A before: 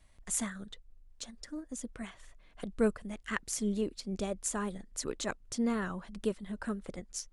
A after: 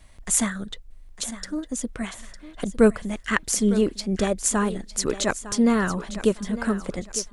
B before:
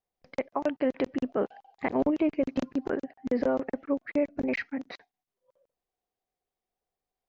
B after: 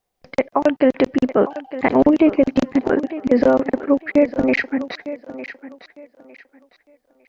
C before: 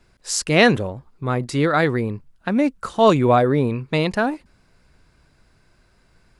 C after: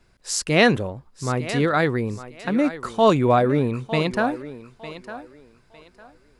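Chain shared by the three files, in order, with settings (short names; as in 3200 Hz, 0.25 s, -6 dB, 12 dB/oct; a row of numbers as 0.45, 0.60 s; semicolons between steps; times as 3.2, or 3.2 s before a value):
thinning echo 0.905 s, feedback 27%, high-pass 250 Hz, level -13 dB; normalise peaks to -3 dBFS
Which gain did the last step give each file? +12.0, +12.0, -2.0 dB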